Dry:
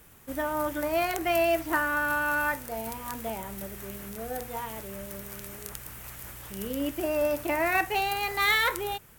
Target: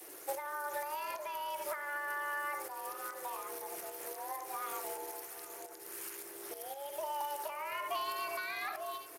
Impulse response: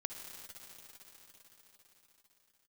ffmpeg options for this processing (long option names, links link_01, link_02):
-filter_complex "[1:a]atrim=start_sample=2205,afade=type=out:start_time=0.14:duration=0.01,atrim=end_sample=6615[link_01];[0:a][link_01]afir=irnorm=-1:irlink=0,asettb=1/sr,asplit=3[link_02][link_03][link_04];[link_02]atrim=end=4.974[link_05];[link_03]atrim=start=4.97:end=7.21,asetpts=PTS-STARTPTS,afade=type=in:duration=0.004:curve=qsin,afade=type=out:start_time=2.236:duration=0.004:curve=qsin,acrossover=split=630[link_06][link_07];[link_06]aeval=exprs='val(0)*(1-0.5/2+0.5/2*cos(2*PI*1.4*n/s))':channel_layout=same[link_08];[link_07]aeval=exprs='val(0)*(1-0.5/2-0.5/2*cos(2*PI*1.4*n/s))':channel_layout=same[link_09];[link_08][link_09]amix=inputs=2:normalize=0[link_10];[link_04]atrim=start=7.206[link_11];[link_05][link_10]acrossfade=duration=0.004:curve1=hsin:curve2=qsin[link_12];[link_12][link_11]acrossfade=duration=0.004:curve1=qsin:curve2=hsin,adynamicequalizer=threshold=0.00501:dfrequency=1100:dqfactor=6.1:tfrequency=1100:tqfactor=6.1:attack=5:release=100:ratio=0.375:range=1.5:mode=boostabove:tftype=bell,afreqshift=280,acrossover=split=550|1500[link_13][link_14][link_15];[link_13]acompressor=threshold=-52dB:ratio=4[link_16];[link_14]acompressor=threshold=-38dB:ratio=4[link_17];[link_15]acompressor=threshold=-44dB:ratio=4[link_18];[link_16][link_17][link_18]amix=inputs=3:normalize=0,highpass=260,acompressor=threshold=-39dB:ratio=20,highshelf=frequency=4600:width_type=q:width=1.5:gain=7,alimiter=level_in=4.5dB:limit=-24dB:level=0:latency=1:release=446,volume=-4.5dB,asplit=2[link_19][link_20];[link_20]adelay=816.3,volume=-16dB,highshelf=frequency=4000:gain=-18.4[link_21];[link_19][link_21]amix=inputs=2:normalize=0,volume=6.5dB" -ar 32000 -c:a libspeex -b:a 28k